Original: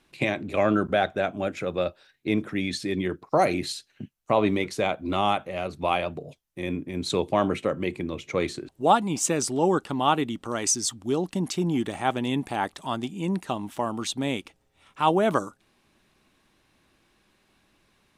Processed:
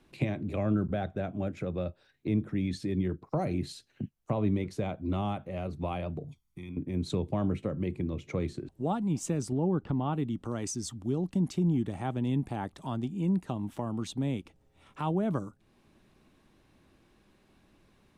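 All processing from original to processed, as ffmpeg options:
ffmpeg -i in.wav -filter_complex "[0:a]asettb=1/sr,asplit=3[link_01][link_02][link_03];[link_01]atrim=end=6.244[link_04];[link_02]atrim=start=6.24:end=6.77,asetpts=PTS-STARTPTS,afade=type=in:duration=0.004:curve=qsin,afade=type=out:start_time=0.526:duration=0.004:curve=qsin,equalizer=frequency=560:width_type=o:width=2.2:gain=-6,aecho=1:1:0.9:0.94,atrim=end_sample=23373,acompressor=threshold=-46dB:ratio=3:attack=3.2:release=140:knee=1:detection=peak[link_05];[link_03]atrim=start=6.766[link_06];[link_04][link_05]acrossfade=duration=0.004:curve1=hsin:curve2=qsin[link_07];[link_07][link_06]acrossfade=duration=0.004:curve1=qsin:curve2=hsin,asettb=1/sr,asplit=3[link_08][link_09][link_10];[link_08]atrim=end=9.524[link_11];[link_09]atrim=start=9.52:end=10.13,asetpts=PTS-STARTPTS,afade=type=in:duration=0.004:curve=qsin,afade=type=out:start_time=0.606:duration=0.004:curve=qsin,lowpass=5800,acompressor=mode=upward:threshold=-24dB:ratio=2.5:attack=3.2:release=140:knee=2.83:detection=peak,aemphasis=mode=reproduction:type=75fm[link_12];[link_10]atrim=start=10.126[link_13];[link_11][link_12]acrossfade=duration=0.004:curve1=hsin:curve2=qsin[link_14];[link_14][link_13]acrossfade=duration=0.004:curve1=qsin:curve2=hsin,tiltshelf=frequency=780:gain=5,acrossover=split=180[link_15][link_16];[link_16]acompressor=threshold=-42dB:ratio=2[link_17];[link_15][link_17]amix=inputs=2:normalize=0" out.wav

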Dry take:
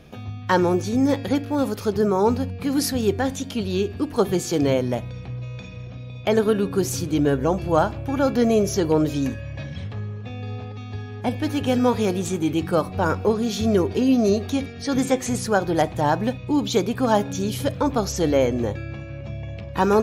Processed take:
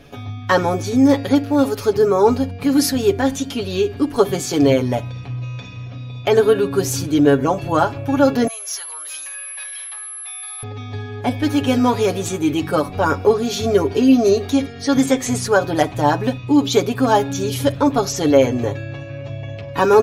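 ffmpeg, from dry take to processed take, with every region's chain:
ffmpeg -i in.wav -filter_complex "[0:a]asettb=1/sr,asplit=3[link_01][link_02][link_03];[link_01]atrim=end=8.474[link_04];[link_02]atrim=start=8.47:end=10.63,asetpts=PTS-STARTPTS,afade=type=in:duration=0.004:curve=qsin,afade=type=out:start_time=2.156:duration=0.004:curve=qsin,acompressor=threshold=-25dB:ratio=3:attack=3.2:release=140:knee=1:detection=peak,aeval=exprs='val(0)+0.0141*sin(2*PI*11000*n/s)':channel_layout=same,highpass=frequency=1000:width=0.5412,highpass=frequency=1000:width=1.3066[link_05];[link_03]atrim=start=10.626[link_06];[link_04][link_05]acrossfade=duration=0.004:curve1=hsin:curve2=qsin[link_07];[link_07][link_06]acrossfade=duration=0.004:curve1=qsin:curve2=hsin,equalizer=frequency=160:width_type=o:width=0.38:gain=-9.5,aecho=1:1:7.1:0.78,volume=3dB" out.wav

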